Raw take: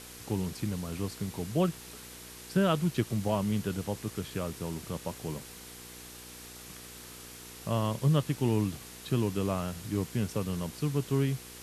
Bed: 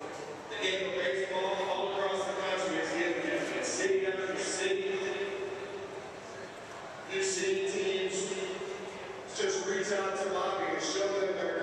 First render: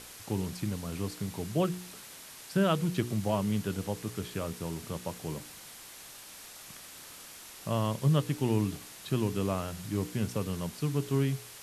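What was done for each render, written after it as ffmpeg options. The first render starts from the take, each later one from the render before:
-af "bandreject=f=60:t=h:w=4,bandreject=f=120:t=h:w=4,bandreject=f=180:t=h:w=4,bandreject=f=240:t=h:w=4,bandreject=f=300:t=h:w=4,bandreject=f=360:t=h:w=4,bandreject=f=420:t=h:w=4,bandreject=f=480:t=h:w=4"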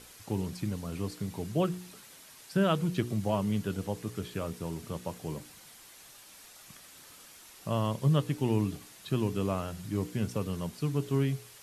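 -af "afftdn=nr=6:nf=-49"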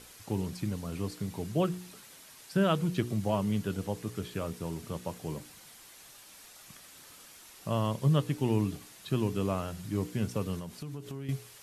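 -filter_complex "[0:a]asettb=1/sr,asplit=3[s0][s1][s2];[s0]atrim=end=10.594[s3];[s1]atrim=start=10.59:end=11.29,asetpts=PTS-STARTPTS,afade=t=in:d=0.004:c=qsin,afade=t=out:st=0.696:d=0.004:c=qsin,acompressor=threshold=0.0158:ratio=8:attack=3.2:release=140:knee=1:detection=peak[s4];[s2]atrim=start=11.286[s5];[s3][s4]acrossfade=d=0.004:c1=hsin:c2=qsin[s6];[s6][s5]acrossfade=d=0.004:c1=qsin:c2=hsin"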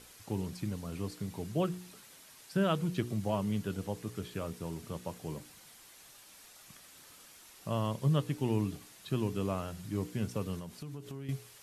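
-af "volume=0.708"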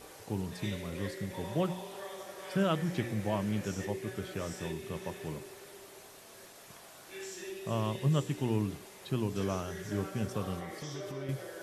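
-filter_complex "[1:a]volume=0.251[s0];[0:a][s0]amix=inputs=2:normalize=0"

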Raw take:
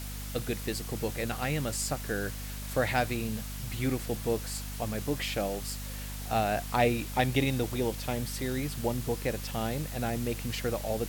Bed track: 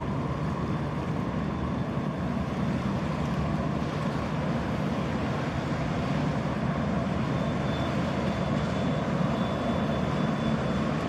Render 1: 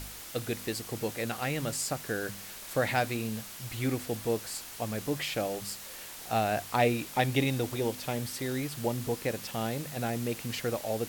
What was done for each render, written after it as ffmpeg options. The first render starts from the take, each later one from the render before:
-af "bandreject=f=50:t=h:w=4,bandreject=f=100:t=h:w=4,bandreject=f=150:t=h:w=4,bandreject=f=200:t=h:w=4,bandreject=f=250:t=h:w=4"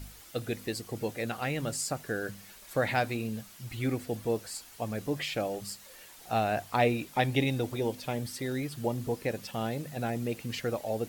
-af "afftdn=nr=9:nf=-44"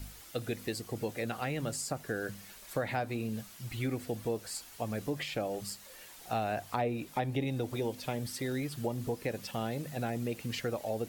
-filter_complex "[0:a]acrossover=split=550|1300[s0][s1][s2];[s2]alimiter=level_in=1.33:limit=0.0631:level=0:latency=1:release=413,volume=0.75[s3];[s0][s1][s3]amix=inputs=3:normalize=0,acompressor=threshold=0.0282:ratio=2.5"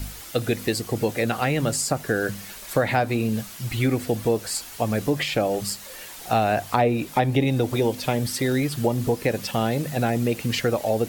-af "volume=3.98"

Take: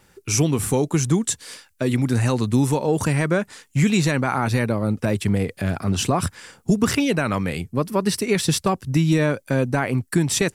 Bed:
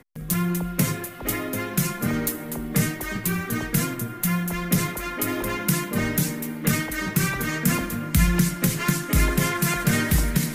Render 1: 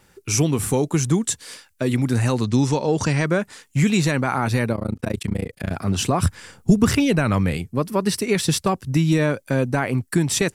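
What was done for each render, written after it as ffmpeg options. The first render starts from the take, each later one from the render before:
-filter_complex "[0:a]asettb=1/sr,asplit=3[s0][s1][s2];[s0]atrim=end=2.444[s3];[s1]atrim=start=2.44:end=3.26,asetpts=PTS-STARTPTS,afade=t=in:d=0.004:c=qsin,afade=t=out:st=0.816:d=0.004:c=qsin,lowpass=f=5600:t=q:w=2.2[s4];[s2]atrim=start=3.256[s5];[s3][s4]acrossfade=d=0.004:c1=hsin:c2=qsin[s6];[s6][s5]acrossfade=d=0.004:c1=qsin:c2=hsin,asplit=3[s7][s8][s9];[s7]afade=t=out:st=4.73:d=0.02[s10];[s8]tremolo=f=28:d=1,afade=t=in:st=4.73:d=0.02,afade=t=out:st=5.7:d=0.02[s11];[s9]afade=t=in:st=5.7:d=0.02[s12];[s10][s11][s12]amix=inputs=3:normalize=0,asettb=1/sr,asplit=3[s13][s14][s15];[s13]atrim=end=6.214[s16];[s14]atrim=start=6.21:end=7.57,asetpts=PTS-STARTPTS,afade=t=in:d=0.004:c=qsin,afade=t=out:st=1.356:d=0.004:c=qsin,lowshelf=f=130:g=11.5[s17];[s15]atrim=start=7.566[s18];[s16][s17]acrossfade=d=0.004:c1=hsin:c2=qsin[s19];[s19][s18]acrossfade=d=0.004:c1=qsin:c2=hsin"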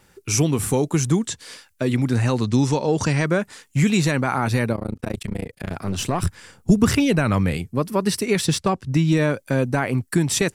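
-filter_complex "[0:a]asettb=1/sr,asplit=3[s0][s1][s2];[s0]atrim=end=1.204[s3];[s1]atrim=start=1.2:end=2.5,asetpts=PTS-STARTPTS,afade=t=in:d=0.004:c=qsin,afade=t=out:st=1.296:d=0.004:c=qsin,acrossover=split=6900[s4][s5];[s5]acompressor=threshold=0.00447:ratio=4:attack=1:release=60[s6];[s4][s6]amix=inputs=2:normalize=0[s7];[s2]atrim=start=2.496[s8];[s3][s7]acrossfade=d=0.004:c1=hsin:c2=qsin[s9];[s9][s8]acrossfade=d=0.004:c1=qsin:c2=hsin,asettb=1/sr,asplit=3[s10][s11][s12];[s10]atrim=end=4.774[s13];[s11]atrim=start=4.77:end=6.7,asetpts=PTS-STARTPTS,afade=t=in:d=0.004:c=qsin,afade=t=out:st=1.926:d=0.004:c=qsin,aeval=exprs='(tanh(5.01*val(0)+0.6)-tanh(0.6))/5.01':c=same[s14];[s12]atrim=start=6.696[s15];[s13][s14]acrossfade=d=0.004:c1=hsin:c2=qsin[s16];[s16][s15]acrossfade=d=0.004:c1=qsin:c2=hsin,asettb=1/sr,asplit=3[s17][s18][s19];[s17]atrim=end=8.464[s20];[s18]atrim=start=8.46:end=9.17,asetpts=PTS-STARTPTS,afade=t=in:d=0.004:c=qsin,afade=t=out:st=0.706:d=0.004:c=qsin,adynamicsmooth=sensitivity=3:basefreq=7500[s21];[s19]atrim=start=9.166[s22];[s20][s21]acrossfade=d=0.004:c1=hsin:c2=qsin[s23];[s23][s22]acrossfade=d=0.004:c1=qsin:c2=hsin"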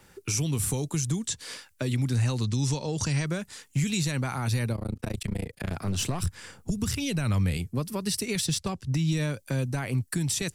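-filter_complex "[0:a]acrossover=split=140|3000[s0][s1][s2];[s1]acompressor=threshold=0.0224:ratio=4[s3];[s0][s3][s2]amix=inputs=3:normalize=0,alimiter=limit=0.126:level=0:latency=1:release=91"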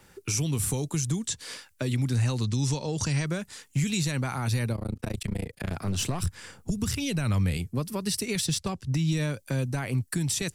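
-af anull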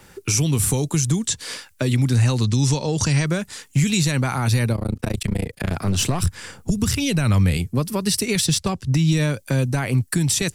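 -af "volume=2.51"

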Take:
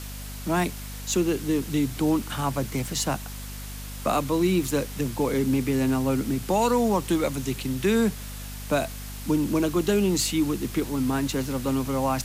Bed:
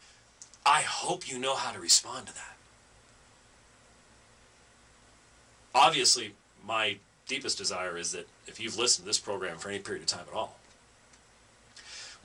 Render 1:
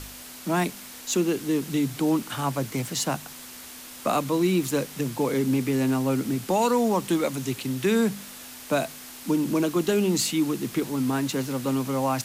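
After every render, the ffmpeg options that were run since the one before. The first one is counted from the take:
-af "bandreject=f=50:t=h:w=4,bandreject=f=100:t=h:w=4,bandreject=f=150:t=h:w=4,bandreject=f=200:t=h:w=4"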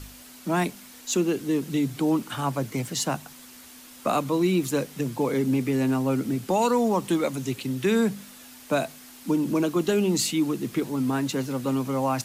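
-af "afftdn=nr=6:nf=-42"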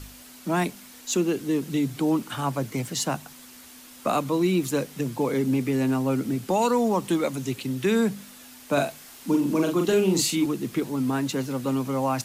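-filter_complex "[0:a]asettb=1/sr,asplit=3[s0][s1][s2];[s0]atrim=end=8.734[s3];[s1]atrim=start=8.73:end=10.46,asetpts=PTS-STARTPTS,afade=t=in:d=0.004:c=qsin,afade=t=out:st=1.726:d=0.004:c=qsin,asplit=2[s4][s5];[s5]adelay=42,volume=0.631[s6];[s4][s6]amix=inputs=2:normalize=0,atrim=end_sample=76293[s7];[s2]atrim=start=10.456[s8];[s3][s7]acrossfade=d=0.004:c1=hsin:c2=qsin[s9];[s9][s8]acrossfade=d=0.004:c1=qsin:c2=hsin"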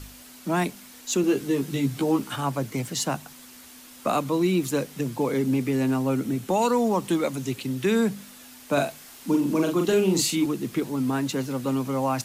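-filter_complex "[0:a]asettb=1/sr,asplit=3[s0][s1][s2];[s0]atrim=end=1.224[s3];[s1]atrim=start=1.22:end=2.36,asetpts=PTS-STARTPTS,afade=t=in:d=0.004:c=qsin,afade=t=out:st=1.136:d=0.004:c=qsin,asplit=2[s4][s5];[s5]adelay=15,volume=0.708[s6];[s4][s6]amix=inputs=2:normalize=0,atrim=end_sample=50274[s7];[s2]atrim=start=2.356[s8];[s3][s7]acrossfade=d=0.004:c1=hsin:c2=qsin[s9];[s9][s8]acrossfade=d=0.004:c1=qsin:c2=hsin,asettb=1/sr,asplit=3[s10][s11][s12];[s10]atrim=end=6.104[s13];[s11]atrim=start=6.1:end=6.57,asetpts=PTS-STARTPTS,afade=t=in:d=0.004:c=qsin,afade=t=out:st=0.466:d=0.004:c=qsin,bandreject=f=4800:w=12[s14];[s12]atrim=start=6.566[s15];[s13][s14]acrossfade=d=0.004:c1=hsin:c2=qsin[s16];[s16][s15]acrossfade=d=0.004:c1=qsin:c2=hsin"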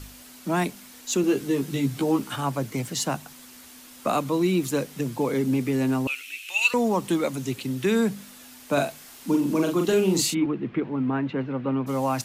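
-filter_complex "[0:a]asettb=1/sr,asplit=3[s0][s1][s2];[s0]atrim=end=6.074[s3];[s1]atrim=start=6.07:end=6.74,asetpts=PTS-STARTPTS,afade=t=in:d=0.004:c=qsin,afade=t=out:st=0.666:d=0.004:c=qsin,highpass=f=2600:t=q:w=13[s4];[s2]atrim=start=6.736[s5];[s3][s4]acrossfade=d=0.004:c1=hsin:c2=qsin[s6];[s6][s5]acrossfade=d=0.004:c1=qsin:c2=hsin,asplit=3[s7][s8][s9];[s7]afade=t=out:st=10.33:d=0.02[s10];[s8]lowpass=f=2600:w=0.5412,lowpass=f=2600:w=1.3066,afade=t=in:st=10.33:d=0.02,afade=t=out:st=11.86:d=0.02[s11];[s9]afade=t=in:st=11.86:d=0.02[s12];[s10][s11][s12]amix=inputs=3:normalize=0"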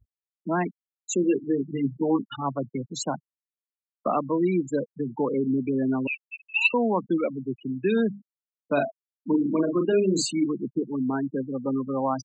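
-af "afftfilt=real='re*gte(hypot(re,im),0.0891)':imag='im*gte(hypot(re,im),0.0891)':win_size=1024:overlap=0.75,highpass=170"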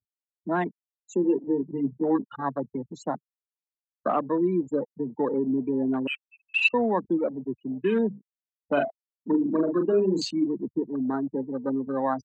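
-af "highpass=180,afwtdn=0.02"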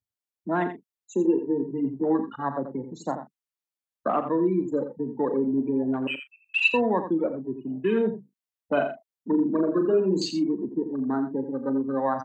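-filter_complex "[0:a]asplit=2[s0][s1];[s1]adelay=37,volume=0.211[s2];[s0][s2]amix=inputs=2:normalize=0,aecho=1:1:85:0.335"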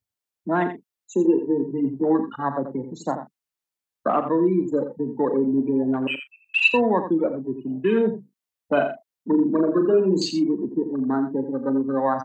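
-af "volume=1.5"

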